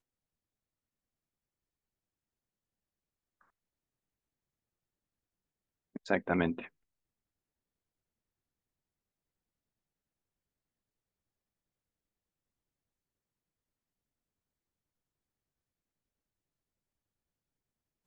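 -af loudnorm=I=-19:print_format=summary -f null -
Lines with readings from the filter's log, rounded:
Input Integrated:    -33.0 LUFS
Input True Peak:     -12.3 dBTP
Input LRA:            21.2 LU
Input Threshold:     -44.4 LUFS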